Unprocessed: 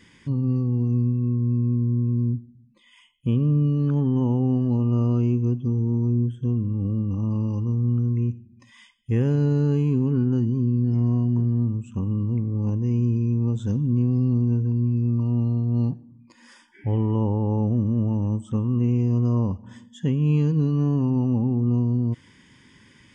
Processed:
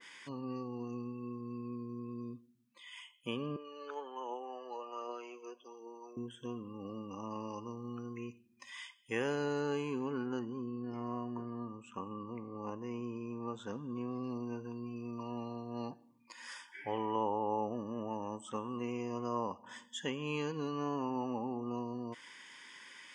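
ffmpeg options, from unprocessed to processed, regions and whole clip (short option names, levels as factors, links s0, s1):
-filter_complex "[0:a]asettb=1/sr,asplit=3[s0][s1][s2];[s0]atrim=end=3.564[s3];[s1]atrim=start=3.56:end=6.17,asetpts=PTS-STARTPTS,afade=t=in:d=0.004:c=qsin,afade=t=out:st=2.606:d=0.004:c=qsin,highpass=f=390:w=0.5412,highpass=f=390:w=1.3066,flanger=delay=0.1:depth=2.4:regen=58:speed=1.3:shape=triangular[s4];[s2]atrim=start=6.166[s5];[s3][s4]acrossfade=d=0.004:c1=hsin:c2=qsin[s6];[s6][s5]acrossfade=d=0.004:c1=qsin:c2=hsin,asettb=1/sr,asplit=3[s7][s8][s9];[s7]atrim=end=10.394[s10];[s8]atrim=start=10.39:end=14.24,asetpts=PTS-STARTPTS,afade=t=in:d=0.004:c=qsin,afade=t=out:st=3.846:d=0.004:c=qsin,lowpass=f=2000:p=1,equalizer=f=1200:w=6:g=6.5[s11];[s9]atrim=start=14.236[s12];[s10][s11]acrossfade=d=0.004:c1=hsin:c2=qsin[s13];[s13][s12]acrossfade=d=0.004:c1=qsin:c2=hsin,highpass=800,adynamicequalizer=threshold=0.00141:dfrequency=1900:dqfactor=0.7:tfrequency=1900:tqfactor=0.7:attack=5:release=100:ratio=0.375:range=2.5:mode=cutabove:tftype=highshelf,volume=1.68"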